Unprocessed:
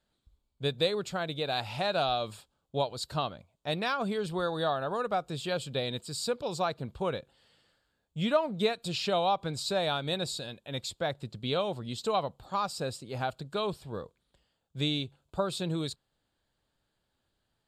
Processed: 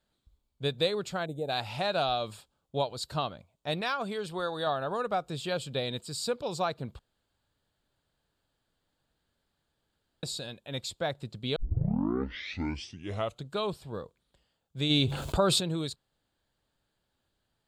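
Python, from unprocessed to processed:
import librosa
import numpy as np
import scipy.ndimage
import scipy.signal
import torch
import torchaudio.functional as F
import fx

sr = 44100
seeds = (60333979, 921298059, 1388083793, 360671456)

y = fx.spec_box(x, sr, start_s=1.26, length_s=0.23, low_hz=900.0, high_hz=6500.0, gain_db=-22)
y = fx.low_shelf(y, sr, hz=320.0, db=-7.0, at=(3.81, 4.67))
y = fx.env_flatten(y, sr, amount_pct=70, at=(14.89, 15.59), fade=0.02)
y = fx.edit(y, sr, fx.room_tone_fill(start_s=6.99, length_s=3.24),
    fx.tape_start(start_s=11.56, length_s=1.96), tone=tone)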